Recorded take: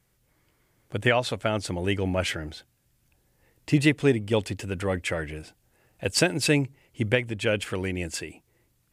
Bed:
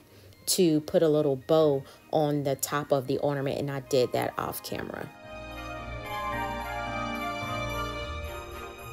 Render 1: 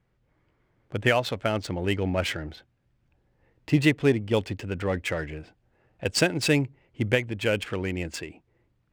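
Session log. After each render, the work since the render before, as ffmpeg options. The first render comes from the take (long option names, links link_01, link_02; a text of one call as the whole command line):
ffmpeg -i in.wav -af "adynamicsmooth=sensitivity=7:basefreq=2600" out.wav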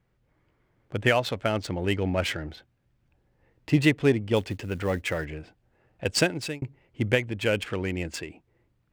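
ffmpeg -i in.wav -filter_complex "[0:a]asettb=1/sr,asplit=3[link_01][link_02][link_03];[link_01]atrim=end=4.364[link_04];[link_02]atrim=start=4.36:end=5.25,asetpts=PTS-STARTPTS,afade=type=in:duration=0.004:curve=qsin,afade=type=out:start_time=0.886:duration=0.004:curve=qsin,acrusher=bits=7:mode=log:mix=0:aa=0.000001[link_05];[link_03]atrim=start=5.246[link_06];[link_04][link_05]acrossfade=duration=0.004:curve1=hsin:curve2=qsin[link_07];[link_07][link_06]acrossfade=duration=0.004:curve1=qsin:curve2=hsin,asplit=2[link_08][link_09];[link_08]atrim=end=6.62,asetpts=PTS-STARTPTS,afade=type=out:start_time=6.21:duration=0.41[link_10];[link_09]atrim=start=6.62,asetpts=PTS-STARTPTS,afade=type=in:duration=0.004:curve=hsin[link_11];[link_10][link_11]concat=n=2:v=0:a=1" out.wav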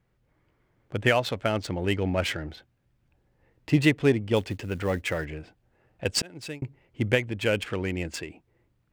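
ffmpeg -i in.wav -filter_complex "[0:a]asplit=2[link_01][link_02];[link_01]atrim=end=6.22,asetpts=PTS-STARTPTS,afade=type=out:start_time=6.216:duration=0.004:curve=hsin[link_03];[link_02]atrim=start=6.22,asetpts=PTS-STARTPTS,afade=type=in:duration=0.43[link_04];[link_03][link_04]concat=n=2:v=0:a=1" out.wav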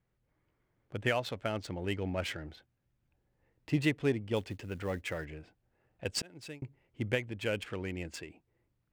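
ffmpeg -i in.wav -af "volume=-8.5dB" out.wav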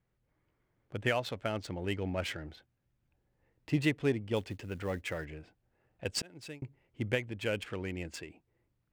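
ffmpeg -i in.wav -af anull out.wav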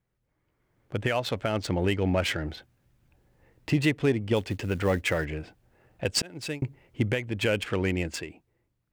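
ffmpeg -i in.wav -af "alimiter=level_in=2dB:limit=-24dB:level=0:latency=1:release=285,volume=-2dB,dynaudnorm=framelen=130:gausssize=13:maxgain=12dB" out.wav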